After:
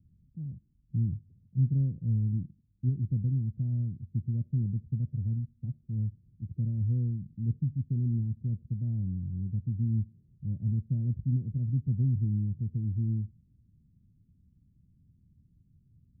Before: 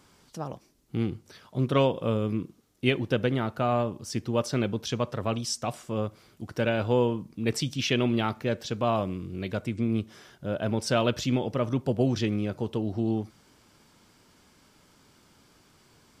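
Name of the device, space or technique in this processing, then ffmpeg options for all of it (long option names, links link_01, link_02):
the neighbour's flat through the wall: -af "lowpass=frequency=170:width=0.5412,lowpass=frequency=170:width=1.3066,equalizer=frequency=82:width_type=o:width=0.7:gain=4,volume=3dB"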